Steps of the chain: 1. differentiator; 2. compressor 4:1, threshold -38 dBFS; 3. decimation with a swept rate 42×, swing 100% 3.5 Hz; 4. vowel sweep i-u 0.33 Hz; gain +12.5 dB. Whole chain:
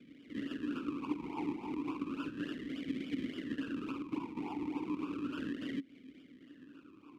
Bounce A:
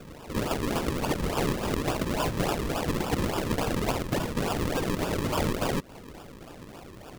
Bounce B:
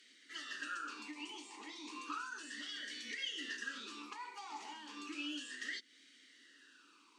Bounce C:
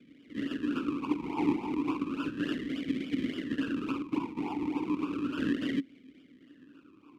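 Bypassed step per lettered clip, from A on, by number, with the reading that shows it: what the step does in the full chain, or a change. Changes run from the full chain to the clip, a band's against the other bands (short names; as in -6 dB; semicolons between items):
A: 4, 250 Hz band -10.0 dB; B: 3, 250 Hz band -18.0 dB; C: 2, mean gain reduction 5.0 dB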